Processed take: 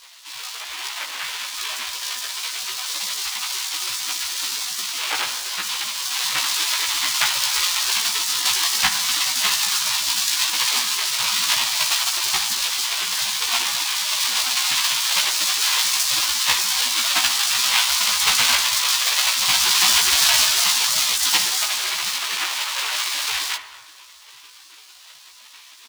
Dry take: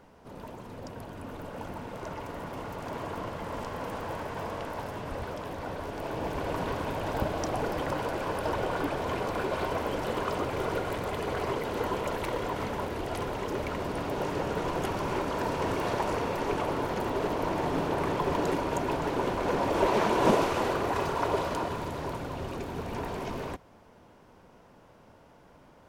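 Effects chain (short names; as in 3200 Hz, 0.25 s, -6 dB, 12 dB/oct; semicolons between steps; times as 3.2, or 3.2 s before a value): half-waves squared off; LPF 3600 Hz 6 dB/oct; bell 990 Hz -12.5 dB 0.38 oct; spectral gate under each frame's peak -25 dB weak; HPF 62 Hz; doubler 16 ms -3 dB; reverb RT60 1.7 s, pre-delay 8 ms, DRR 7.5 dB; maximiser +23 dB; gain -1 dB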